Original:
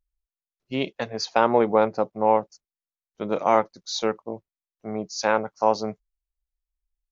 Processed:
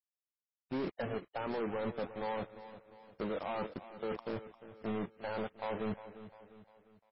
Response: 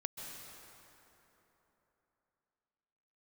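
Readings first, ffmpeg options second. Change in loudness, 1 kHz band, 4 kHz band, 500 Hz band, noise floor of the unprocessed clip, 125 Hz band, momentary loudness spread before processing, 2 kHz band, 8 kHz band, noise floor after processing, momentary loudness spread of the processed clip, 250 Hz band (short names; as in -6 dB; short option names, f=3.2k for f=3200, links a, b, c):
-15.5 dB, -18.0 dB, -18.5 dB, -15.0 dB, under -85 dBFS, -7.5 dB, 14 LU, -13.5 dB, n/a, under -85 dBFS, 16 LU, -10.5 dB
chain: -af "lowpass=f=1.8k:w=0.5412,lowpass=f=1.8k:w=1.3066,adynamicequalizer=threshold=0.0355:dfrequency=770:dqfactor=0.76:tfrequency=770:tqfactor=0.76:attack=5:release=100:ratio=0.375:range=3:mode=cutabove:tftype=bell,areverse,acompressor=threshold=-32dB:ratio=20,areverse,alimiter=level_in=5.5dB:limit=-24dB:level=0:latency=1:release=46,volume=-5.5dB,acrusher=bits=7:mix=0:aa=0.5,asoftclip=type=hard:threshold=-38dB,aecho=1:1:351|702|1053|1404:0.2|0.0918|0.0422|0.0194,volume=7dB" -ar 16000 -c:a libmp3lame -b:a 16k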